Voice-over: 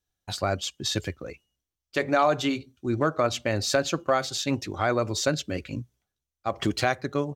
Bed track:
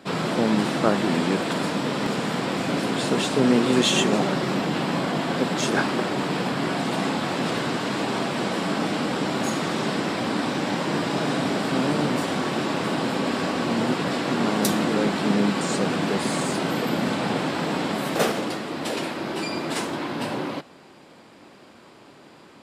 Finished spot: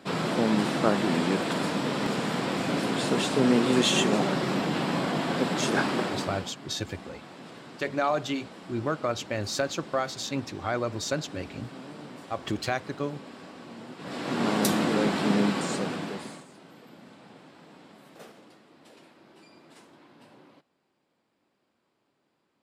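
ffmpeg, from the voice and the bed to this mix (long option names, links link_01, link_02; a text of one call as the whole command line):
ffmpeg -i stem1.wav -i stem2.wav -filter_complex "[0:a]adelay=5850,volume=-4.5dB[link_01];[1:a]volume=14.5dB,afade=type=out:start_time=6:duration=0.54:silence=0.141254,afade=type=in:start_time=13.97:duration=0.54:silence=0.133352,afade=type=out:start_time=15.4:duration=1.05:silence=0.0668344[link_02];[link_01][link_02]amix=inputs=2:normalize=0" out.wav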